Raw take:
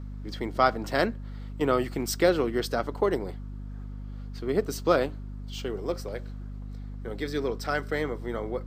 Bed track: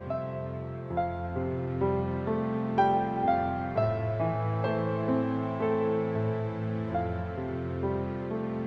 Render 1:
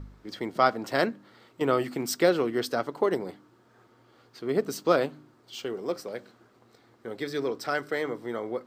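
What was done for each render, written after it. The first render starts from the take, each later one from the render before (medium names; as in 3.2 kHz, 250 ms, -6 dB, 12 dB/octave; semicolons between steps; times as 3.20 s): de-hum 50 Hz, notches 6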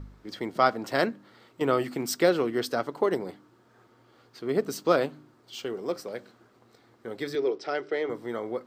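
7.35–8.10 s: cabinet simulation 230–5300 Hz, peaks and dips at 240 Hz -9 dB, 380 Hz +8 dB, 1.1 kHz -7 dB, 1.6 kHz -6 dB, 4.2 kHz -5 dB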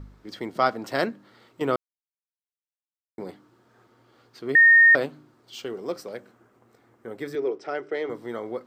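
1.76–3.18 s: mute; 4.55–4.95 s: bleep 1.84 kHz -10.5 dBFS; 6.17–7.95 s: peaking EQ 4.2 kHz -10 dB 0.9 oct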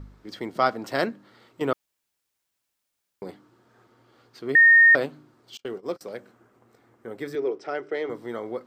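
1.73–3.22 s: room tone; 5.57–6.01 s: gate -37 dBFS, range -32 dB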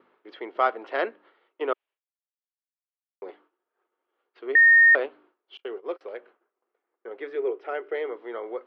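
expander -47 dBFS; Chebyshev band-pass 380–3000 Hz, order 3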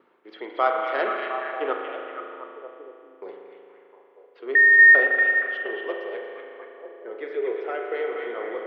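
repeats whose band climbs or falls 236 ms, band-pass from 2.6 kHz, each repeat -0.7 oct, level -2 dB; spring tank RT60 2.7 s, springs 37 ms, chirp 20 ms, DRR 1.5 dB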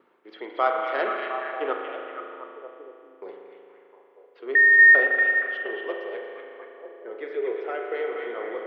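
trim -1 dB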